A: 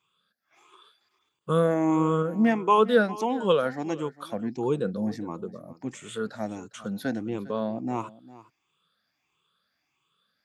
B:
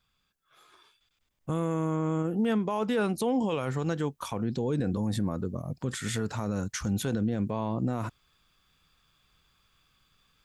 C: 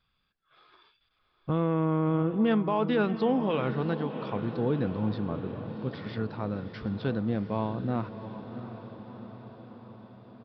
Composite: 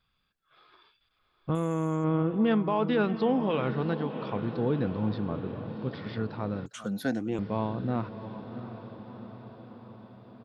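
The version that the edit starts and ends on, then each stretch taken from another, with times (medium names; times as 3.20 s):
C
1.55–2.04 s: from B
6.66–7.39 s: from A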